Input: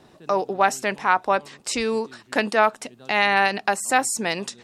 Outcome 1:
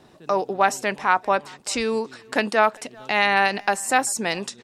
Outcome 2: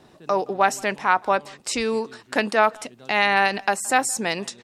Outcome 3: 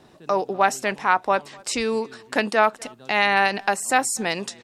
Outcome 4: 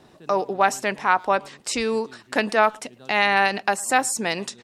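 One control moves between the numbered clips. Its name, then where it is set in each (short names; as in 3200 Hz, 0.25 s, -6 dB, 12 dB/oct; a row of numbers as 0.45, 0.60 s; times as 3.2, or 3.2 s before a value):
speakerphone echo, time: 0.39, 0.17, 0.25, 0.11 s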